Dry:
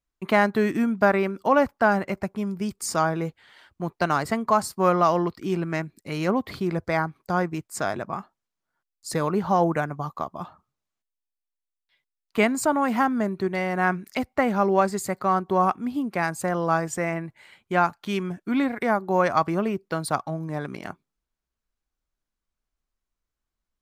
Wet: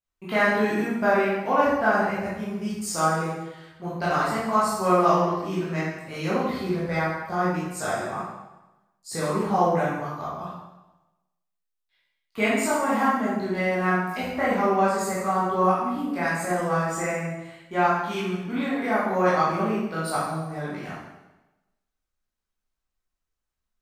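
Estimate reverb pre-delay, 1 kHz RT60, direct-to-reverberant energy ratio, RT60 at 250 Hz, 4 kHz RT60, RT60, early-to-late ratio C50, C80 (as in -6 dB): 7 ms, 1.0 s, -10.0 dB, 1.1 s, 0.95 s, 1.0 s, -1.0 dB, 2.5 dB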